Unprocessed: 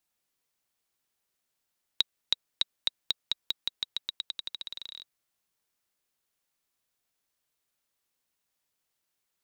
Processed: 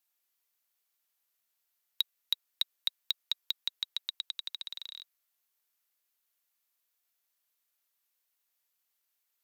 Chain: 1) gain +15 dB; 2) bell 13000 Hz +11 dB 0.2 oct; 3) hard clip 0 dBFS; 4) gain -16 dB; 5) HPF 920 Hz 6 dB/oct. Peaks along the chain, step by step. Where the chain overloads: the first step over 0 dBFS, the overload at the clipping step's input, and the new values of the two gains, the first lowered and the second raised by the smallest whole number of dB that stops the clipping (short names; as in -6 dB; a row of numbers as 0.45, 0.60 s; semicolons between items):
+7.0, +7.0, 0.0, -16.0, -14.0 dBFS; step 1, 7.0 dB; step 1 +8 dB, step 4 -9 dB